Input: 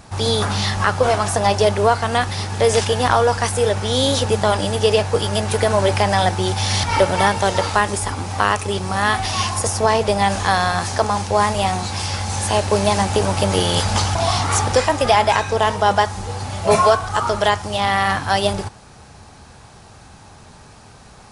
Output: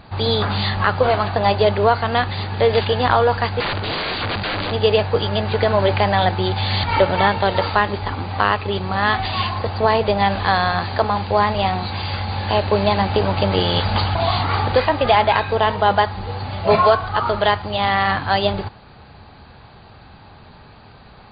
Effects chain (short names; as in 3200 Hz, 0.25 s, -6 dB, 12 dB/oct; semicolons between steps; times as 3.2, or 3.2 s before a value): 3.6–4.72 wrapped overs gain 16 dB; brick-wall FIR low-pass 4800 Hz